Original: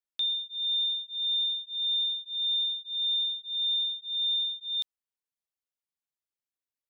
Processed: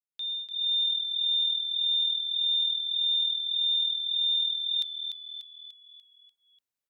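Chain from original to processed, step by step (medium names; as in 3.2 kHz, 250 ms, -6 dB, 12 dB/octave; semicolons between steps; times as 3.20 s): fade-in on the opening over 0.53 s; frequency-shifting echo 294 ms, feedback 52%, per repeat -40 Hz, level -7 dB; trim +1.5 dB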